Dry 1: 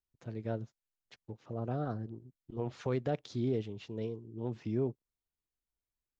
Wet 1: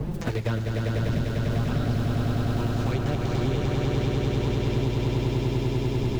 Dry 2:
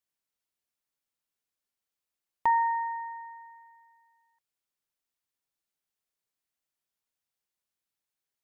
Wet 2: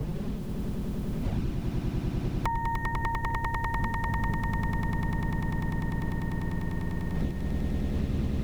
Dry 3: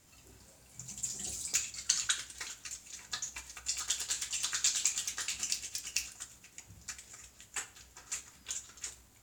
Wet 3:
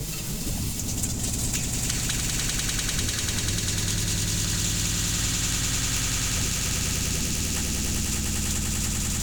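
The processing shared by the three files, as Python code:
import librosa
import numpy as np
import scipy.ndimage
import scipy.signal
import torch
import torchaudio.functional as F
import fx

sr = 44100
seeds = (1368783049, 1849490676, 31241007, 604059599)

p1 = fx.envelope_flatten(x, sr, power=0.6)
p2 = fx.dmg_wind(p1, sr, seeds[0], corner_hz=170.0, level_db=-41.0)
p3 = fx.level_steps(p2, sr, step_db=20)
p4 = p2 + F.gain(torch.from_numpy(p3), 0.0).numpy()
p5 = fx.env_flanger(p4, sr, rest_ms=8.7, full_db=-24.5)
p6 = p5 + fx.echo_swell(p5, sr, ms=99, loudest=8, wet_db=-3.5, dry=0)
y = fx.band_squash(p6, sr, depth_pct=100)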